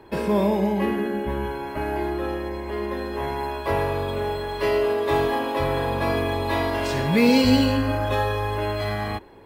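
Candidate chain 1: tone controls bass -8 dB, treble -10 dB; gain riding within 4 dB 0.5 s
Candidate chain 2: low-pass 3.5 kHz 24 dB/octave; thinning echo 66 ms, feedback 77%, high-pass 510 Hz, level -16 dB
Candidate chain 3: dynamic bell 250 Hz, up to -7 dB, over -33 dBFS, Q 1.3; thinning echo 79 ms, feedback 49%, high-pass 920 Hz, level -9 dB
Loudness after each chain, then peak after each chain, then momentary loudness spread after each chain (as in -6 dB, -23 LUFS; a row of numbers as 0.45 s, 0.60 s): -26.0 LUFS, -24.0 LUFS, -25.5 LUFS; -12.5 dBFS, -7.0 dBFS, -9.5 dBFS; 2 LU, 10 LU, 9 LU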